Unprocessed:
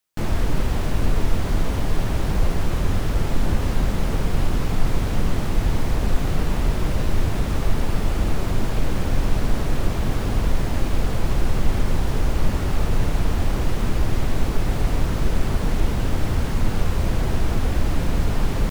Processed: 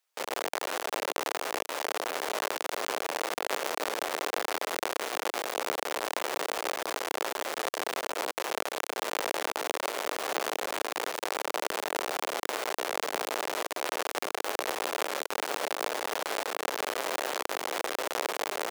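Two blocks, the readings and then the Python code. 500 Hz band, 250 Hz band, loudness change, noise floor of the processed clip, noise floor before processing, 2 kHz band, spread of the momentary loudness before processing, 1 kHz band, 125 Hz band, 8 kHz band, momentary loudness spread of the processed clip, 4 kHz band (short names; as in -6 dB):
-2.0 dB, -17.0 dB, -7.5 dB, -80 dBFS, -24 dBFS, +1.0 dB, 1 LU, +0.5 dB, under -40 dB, +1.5 dB, 1 LU, +1.0 dB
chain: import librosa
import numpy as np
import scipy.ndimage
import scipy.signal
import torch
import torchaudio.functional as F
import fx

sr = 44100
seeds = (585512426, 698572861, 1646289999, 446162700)

y = fx.halfwave_hold(x, sr)
y = scipy.signal.sosfilt(scipy.signal.butter(4, 460.0, 'highpass', fs=sr, output='sos'), y)
y = y * librosa.db_to_amplitude(-4.0)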